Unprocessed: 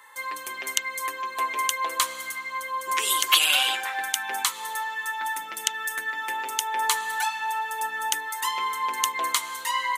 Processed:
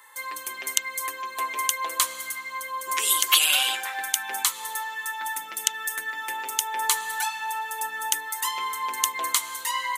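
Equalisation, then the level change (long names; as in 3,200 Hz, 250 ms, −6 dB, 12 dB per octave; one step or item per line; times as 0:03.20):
high-shelf EQ 5,500 Hz +8 dB
−2.5 dB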